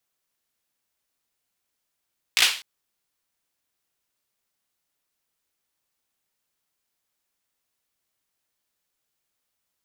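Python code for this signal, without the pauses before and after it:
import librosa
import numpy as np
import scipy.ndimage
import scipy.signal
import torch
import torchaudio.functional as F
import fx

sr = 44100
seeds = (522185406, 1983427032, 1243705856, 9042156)

y = fx.drum_clap(sr, seeds[0], length_s=0.25, bursts=4, spacing_ms=17, hz=2900.0, decay_s=0.39)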